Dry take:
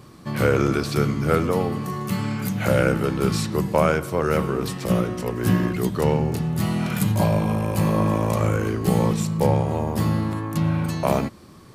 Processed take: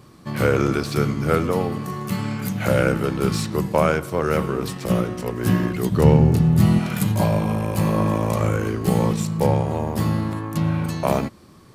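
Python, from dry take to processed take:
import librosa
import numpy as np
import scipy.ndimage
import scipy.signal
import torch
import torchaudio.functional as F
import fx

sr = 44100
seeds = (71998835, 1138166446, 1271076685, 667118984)

p1 = fx.low_shelf(x, sr, hz=270.0, db=10.5, at=(5.91, 6.79))
p2 = np.sign(p1) * np.maximum(np.abs(p1) - 10.0 ** (-30.5 / 20.0), 0.0)
p3 = p1 + (p2 * 10.0 ** (-8.0 / 20.0))
y = p3 * 10.0 ** (-2.0 / 20.0)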